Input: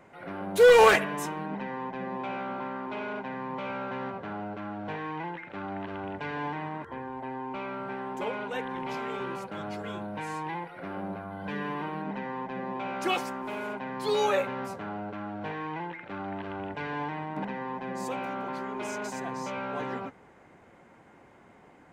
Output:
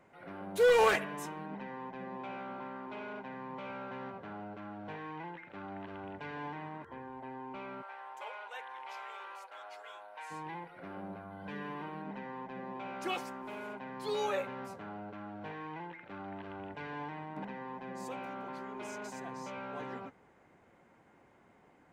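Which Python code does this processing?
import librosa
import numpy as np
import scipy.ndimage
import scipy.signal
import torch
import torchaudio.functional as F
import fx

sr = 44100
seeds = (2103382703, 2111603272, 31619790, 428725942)

y = fx.highpass(x, sr, hz=640.0, slope=24, at=(7.81, 10.3), fade=0.02)
y = y * 10.0 ** (-8.0 / 20.0)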